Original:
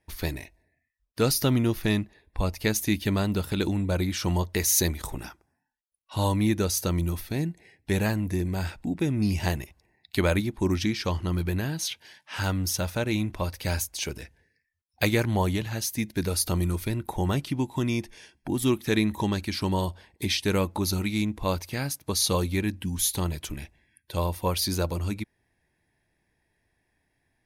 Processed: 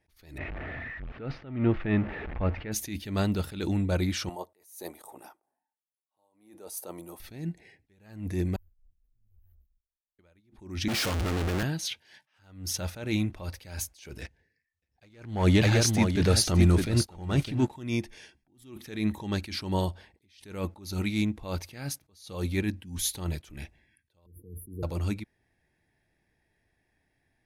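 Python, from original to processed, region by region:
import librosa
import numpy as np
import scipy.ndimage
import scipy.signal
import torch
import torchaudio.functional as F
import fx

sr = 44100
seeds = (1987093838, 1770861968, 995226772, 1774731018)

y = fx.chain(x, sr, fx.zero_step(step_db=-30.5),
    fx.lowpass(hz=2400.0, slope=24), at=(0.38, 2.72))
y = fx.chain(y, sr, fx.highpass(hz=540.0, slope=12),
    fx.band_shelf(hz=3000.0, db=-13.5, octaves=2.6), at=(4.29, 7.2))
y = fx.chain(y, sr, fx.cheby2_bandstop(low_hz=130.0, high_hz=9100.0, order=4, stop_db=70),
    fx.leveller(passes=2), at=(8.56, 10.19))
y = fx.chain(y, sr, fx.clip_1bit(),
    fx.band_widen(depth_pct=70), at=(10.88, 11.63))
y = fx.chain(y, sr, fx.lowpass(hz=8700.0, slope=12),
    fx.leveller(passes=2),
    fx.echo_single(ms=608, db=-8.0), at=(14.21, 17.72))
y = fx.chain(y, sr, fx.brickwall_bandstop(low_hz=490.0, high_hz=9700.0),
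    fx.high_shelf(hz=5500.0, db=-10.5),
    fx.band_squash(depth_pct=40), at=(24.26, 24.83))
y = fx.high_shelf(y, sr, hz=9000.0, db=-7.5)
y = fx.notch(y, sr, hz=1000.0, q=10.0)
y = fx.attack_slew(y, sr, db_per_s=110.0)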